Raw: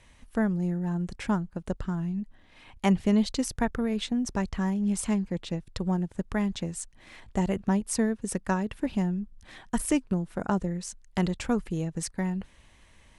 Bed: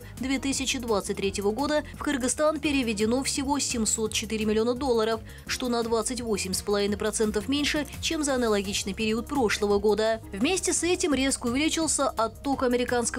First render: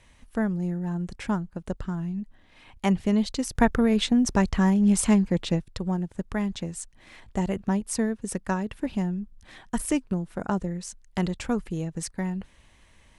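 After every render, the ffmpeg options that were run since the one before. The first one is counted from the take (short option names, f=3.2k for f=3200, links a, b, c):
-filter_complex "[0:a]asplit=3[a][b][c];[a]atrim=end=3.552[d];[b]atrim=start=3.548:end=5.622,asetpts=PTS-STARTPTS,volume=7dB[e];[c]atrim=start=5.618[f];[d][e]acrossfade=d=0.004:c1=hsin:c2=hsin[g];[g][f]acrossfade=d=0.004:c1=hsin:c2=hsin"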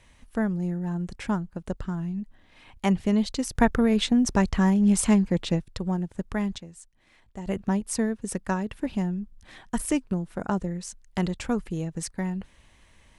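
-filter_complex "[0:a]asplit=3[a][b][c];[a]atrim=end=6.582[d];[b]atrim=start=6.578:end=7.462,asetpts=PTS-STARTPTS,volume=-11dB[e];[c]atrim=start=7.458[f];[d][e]acrossfade=d=0.004:c1=hsin:c2=hsin[g];[g][f]acrossfade=d=0.004:c1=hsin:c2=hsin"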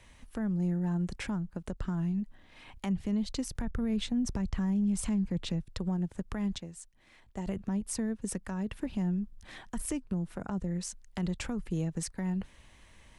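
-filter_complex "[0:a]acrossover=split=190[a][b];[b]acompressor=threshold=-33dB:ratio=6[c];[a][c]amix=inputs=2:normalize=0,alimiter=limit=-23.5dB:level=0:latency=1:release=109"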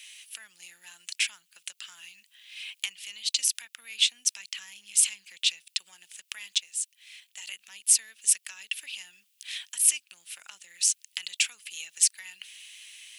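-af "crystalizer=i=6:c=0,highpass=f=2.7k:t=q:w=3.1"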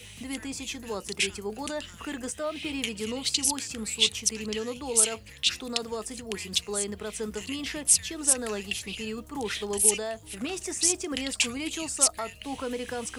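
-filter_complex "[1:a]volume=-8.5dB[a];[0:a][a]amix=inputs=2:normalize=0"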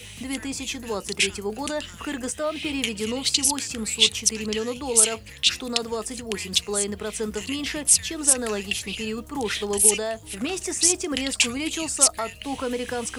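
-af "volume=5dB,alimiter=limit=-3dB:level=0:latency=1"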